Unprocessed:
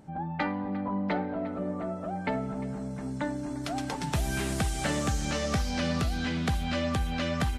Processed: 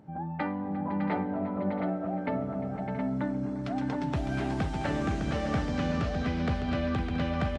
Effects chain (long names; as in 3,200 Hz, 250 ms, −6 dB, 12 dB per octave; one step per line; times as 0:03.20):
high-pass filter 73 Hz
head-to-tape spacing loss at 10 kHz 25 dB
multi-tap delay 508/607/677/719 ms −13/−7.5/−13.5/−5.5 dB